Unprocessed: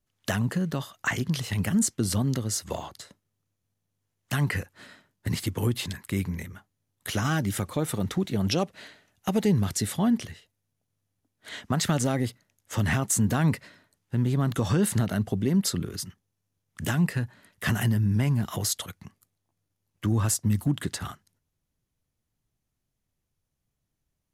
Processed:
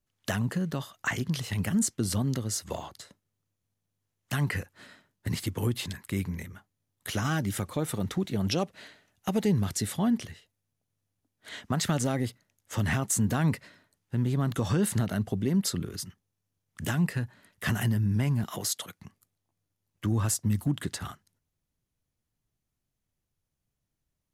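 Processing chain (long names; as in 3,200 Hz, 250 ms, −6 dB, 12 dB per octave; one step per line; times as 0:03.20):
0:18.44–0:19.00: high-pass filter 170 Hz 12 dB per octave
level −2.5 dB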